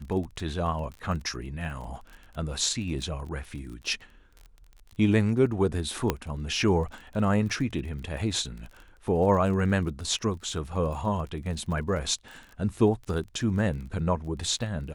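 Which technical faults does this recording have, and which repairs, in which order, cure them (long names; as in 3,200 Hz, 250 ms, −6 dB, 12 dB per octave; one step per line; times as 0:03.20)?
surface crackle 27 per second −36 dBFS
0:06.10: click −10 dBFS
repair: click removal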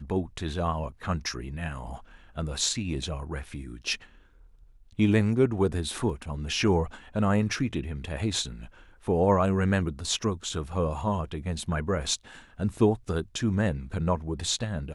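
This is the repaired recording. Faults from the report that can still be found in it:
0:06.10: click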